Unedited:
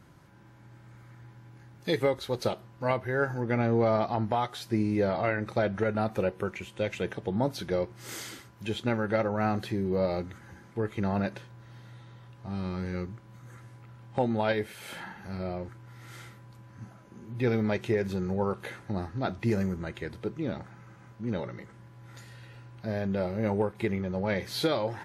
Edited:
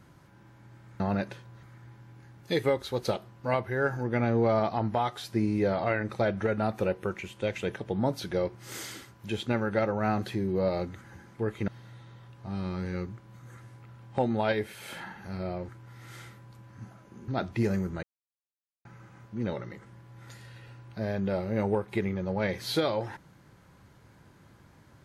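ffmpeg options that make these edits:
ffmpeg -i in.wav -filter_complex "[0:a]asplit=7[link_01][link_02][link_03][link_04][link_05][link_06][link_07];[link_01]atrim=end=1.002[link_08];[link_02]atrim=start=11.048:end=11.682[link_09];[link_03]atrim=start=0.998:end=11.052[link_10];[link_04]atrim=start=11.678:end=17.282[link_11];[link_05]atrim=start=19.148:end=19.9,asetpts=PTS-STARTPTS,afade=type=out:start_time=0.748:duration=0.004:curve=hsin[link_12];[link_06]atrim=start=19.9:end=20.72,asetpts=PTS-STARTPTS,volume=0[link_13];[link_07]atrim=start=20.72,asetpts=PTS-STARTPTS,afade=type=in:duration=0.004:curve=hsin[link_14];[link_08][link_09]acrossfade=duration=0.004:curve1=hsin:curve2=hsin[link_15];[link_15][link_10]acrossfade=duration=0.004:curve1=hsin:curve2=hsin[link_16];[link_16][link_11]acrossfade=duration=0.004:curve1=hsin:curve2=hsin[link_17];[link_12][link_13][link_14]concat=n=3:v=0:a=1[link_18];[link_17][link_18]acrossfade=duration=0.004:curve1=hsin:curve2=hsin" out.wav

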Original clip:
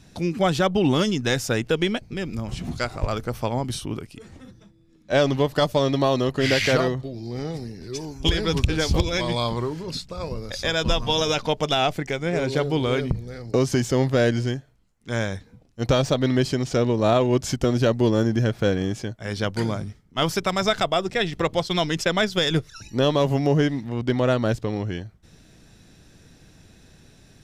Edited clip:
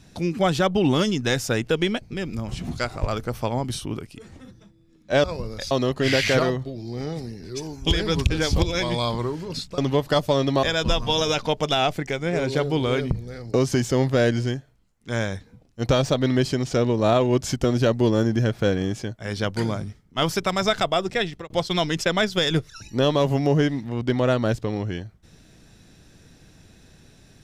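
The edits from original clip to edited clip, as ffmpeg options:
ffmpeg -i in.wav -filter_complex "[0:a]asplit=6[link_01][link_02][link_03][link_04][link_05][link_06];[link_01]atrim=end=5.242[link_07];[link_02]atrim=start=10.158:end=10.632[link_08];[link_03]atrim=start=6.088:end=10.162[link_09];[link_04]atrim=start=5.238:end=6.092[link_10];[link_05]atrim=start=10.628:end=21.5,asetpts=PTS-STARTPTS,afade=type=out:start_time=10.552:duration=0.32[link_11];[link_06]atrim=start=21.5,asetpts=PTS-STARTPTS,afade=type=in:duration=0.004:curve=hsin[link_12];[link_07][link_08]acrossfade=duration=0.004:curve1=hsin:curve2=hsin[link_13];[link_13][link_09]acrossfade=duration=0.004:curve1=hsin:curve2=hsin[link_14];[link_14][link_10]acrossfade=duration=0.004:curve1=hsin:curve2=hsin[link_15];[link_11][link_12]concat=n=2:v=0:a=1[link_16];[link_15][link_16]acrossfade=duration=0.004:curve1=hsin:curve2=hsin" out.wav

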